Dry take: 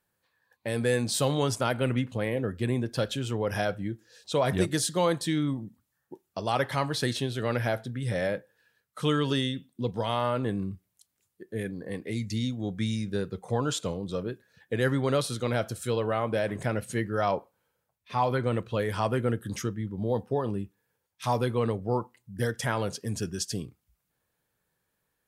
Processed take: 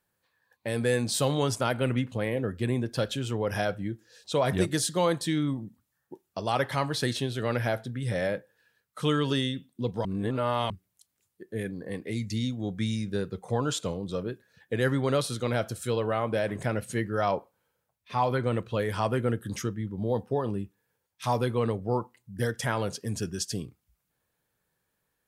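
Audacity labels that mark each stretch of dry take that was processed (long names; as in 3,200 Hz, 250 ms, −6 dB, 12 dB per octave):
10.050000	10.700000	reverse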